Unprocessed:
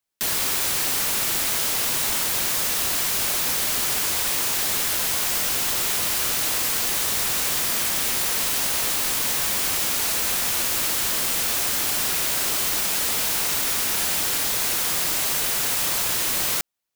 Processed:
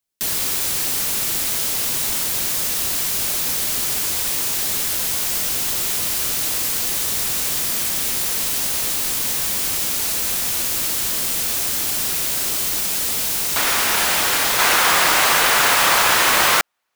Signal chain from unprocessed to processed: peaking EQ 1.2 kHz -5 dB 3 oct, from 13.56 s +9 dB, from 14.59 s +15 dB; trim +2.5 dB

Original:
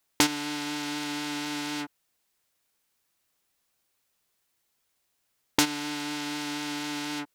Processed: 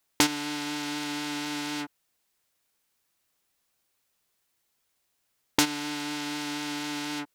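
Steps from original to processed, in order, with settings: no audible change

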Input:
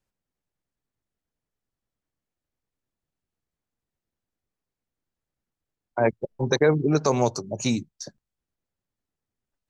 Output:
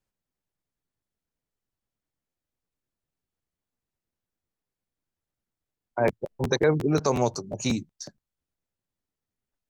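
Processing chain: crackling interface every 0.18 s, samples 512, repeat, from 0.67 s; trim -2 dB

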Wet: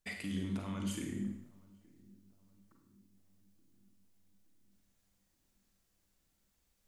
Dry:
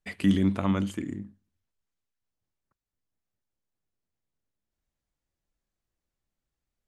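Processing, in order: treble shelf 3.4 kHz +8 dB; reverse; compression 5:1, threshold -38 dBFS, peak gain reduction 18.5 dB; reverse; peak limiter -35.5 dBFS, peak gain reduction 10.5 dB; filtered feedback delay 871 ms, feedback 55%, low-pass 830 Hz, level -23.5 dB; reverberation RT60 0.75 s, pre-delay 33 ms, DRR 2 dB; trim +4 dB

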